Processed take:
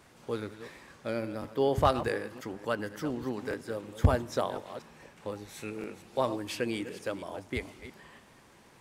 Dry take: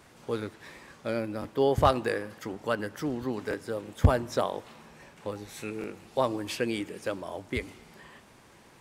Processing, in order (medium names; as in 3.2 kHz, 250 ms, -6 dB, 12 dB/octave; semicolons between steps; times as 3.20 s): chunks repeated in reverse 241 ms, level -12.5 dB; trim -2.5 dB